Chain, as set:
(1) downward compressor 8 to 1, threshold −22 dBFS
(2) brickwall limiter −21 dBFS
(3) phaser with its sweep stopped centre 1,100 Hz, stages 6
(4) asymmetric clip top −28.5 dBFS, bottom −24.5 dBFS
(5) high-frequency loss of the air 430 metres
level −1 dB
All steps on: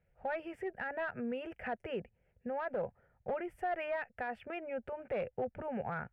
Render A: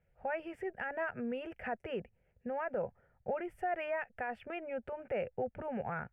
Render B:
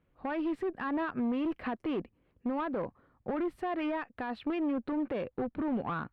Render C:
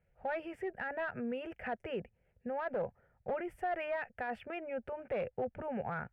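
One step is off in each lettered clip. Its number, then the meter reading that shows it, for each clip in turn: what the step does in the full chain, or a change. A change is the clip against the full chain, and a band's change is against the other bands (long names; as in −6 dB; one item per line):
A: 4, distortion level −20 dB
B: 3, 250 Hz band +10.0 dB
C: 1, average gain reduction 3.5 dB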